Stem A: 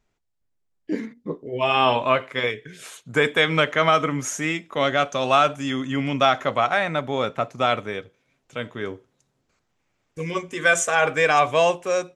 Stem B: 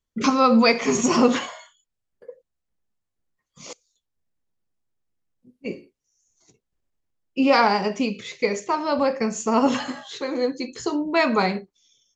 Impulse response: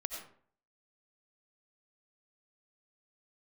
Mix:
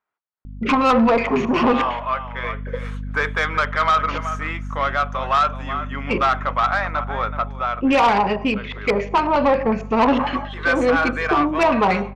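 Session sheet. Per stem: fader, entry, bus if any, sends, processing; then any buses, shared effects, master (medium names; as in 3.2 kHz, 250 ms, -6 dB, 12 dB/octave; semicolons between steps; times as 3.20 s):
+1.0 dB, 0.00 s, no send, echo send -13.5 dB, band-pass filter 1.2 kHz, Q 2.1
+1.5 dB, 0.45 s, send -14.5 dB, no echo send, treble shelf 5.2 kHz -7 dB; LFO low-pass square 5.5 Hz 990–2700 Hz; hum 50 Hz, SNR 15 dB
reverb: on, RT60 0.55 s, pre-delay 50 ms
echo: delay 375 ms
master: peaking EQ 7.2 kHz -5 dB 0.28 oct; level rider gain up to 7.5 dB; saturation -11 dBFS, distortion -12 dB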